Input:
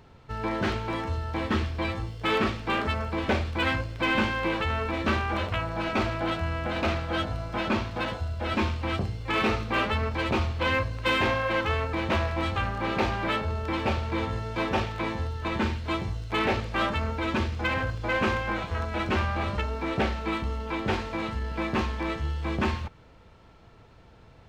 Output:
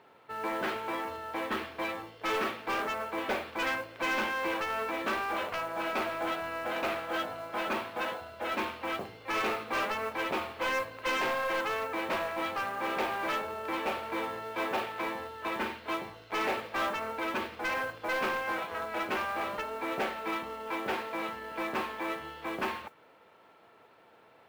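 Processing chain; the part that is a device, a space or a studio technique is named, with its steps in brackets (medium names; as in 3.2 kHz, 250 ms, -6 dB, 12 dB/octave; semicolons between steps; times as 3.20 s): carbon microphone (band-pass 410–3100 Hz; saturation -25 dBFS, distortion -13 dB; modulation noise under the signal 23 dB)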